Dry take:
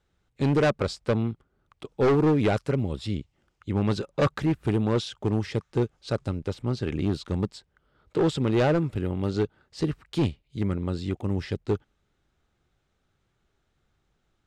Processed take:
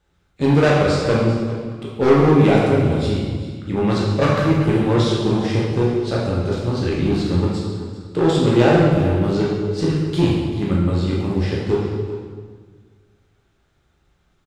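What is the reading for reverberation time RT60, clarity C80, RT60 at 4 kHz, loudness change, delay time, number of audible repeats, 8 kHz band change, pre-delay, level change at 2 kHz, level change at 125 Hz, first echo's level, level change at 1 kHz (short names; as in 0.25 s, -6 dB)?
1.6 s, 2.5 dB, 1.5 s, +8.5 dB, 0.39 s, 1, +8.5 dB, 8 ms, +9.5 dB, +9.0 dB, -14.0 dB, +9.5 dB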